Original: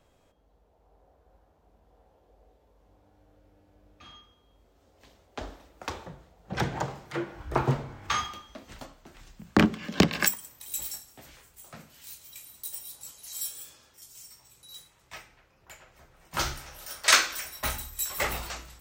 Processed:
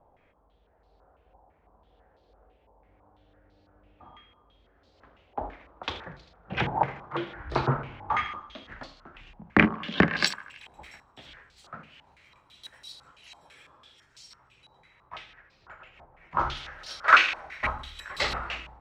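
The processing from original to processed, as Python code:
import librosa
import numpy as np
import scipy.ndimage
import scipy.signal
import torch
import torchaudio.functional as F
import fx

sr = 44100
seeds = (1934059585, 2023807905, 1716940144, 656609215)

y = fx.echo_thinned(x, sr, ms=79, feedback_pct=67, hz=920.0, wet_db=-14)
y = fx.filter_held_lowpass(y, sr, hz=6.0, low_hz=870.0, high_hz=4300.0)
y = y * librosa.db_to_amplitude(-1.0)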